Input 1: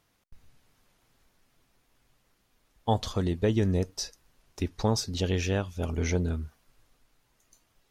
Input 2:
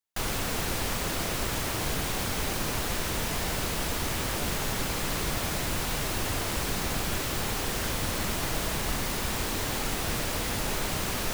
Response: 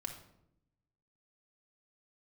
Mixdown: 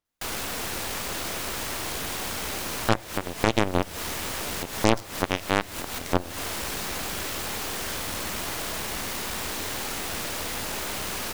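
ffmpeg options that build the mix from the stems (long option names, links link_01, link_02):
-filter_complex "[0:a]aeval=exprs='0.251*(cos(1*acos(clip(val(0)/0.251,-1,1)))-cos(1*PI/2))+0.0891*(cos(3*acos(clip(val(0)/0.251,-1,1)))-cos(3*PI/2))':channel_layout=same,volume=3dB,asplit=3[link_01][link_02][link_03];[link_02]volume=-10.5dB[link_04];[1:a]highpass=56,lowshelf=frequency=450:gain=-4,asoftclip=type=tanh:threshold=-27dB,adelay=50,volume=-0.5dB[link_05];[link_03]apad=whole_len=502286[link_06];[link_05][link_06]sidechaincompress=threshold=-48dB:ratio=8:attack=38:release=146[link_07];[2:a]atrim=start_sample=2205[link_08];[link_04][link_08]afir=irnorm=-1:irlink=0[link_09];[link_01][link_07][link_09]amix=inputs=3:normalize=0,equalizer=frequency=130:width=2.2:gain=-6,aeval=exprs='0.531*(cos(1*acos(clip(val(0)/0.531,-1,1)))-cos(1*PI/2))+0.0841*(cos(3*acos(clip(val(0)/0.531,-1,1)))-cos(3*PI/2))+0.0841*(cos(5*acos(clip(val(0)/0.531,-1,1)))-cos(5*PI/2))+0.188*(cos(8*acos(clip(val(0)/0.531,-1,1)))-cos(8*PI/2))':channel_layout=same"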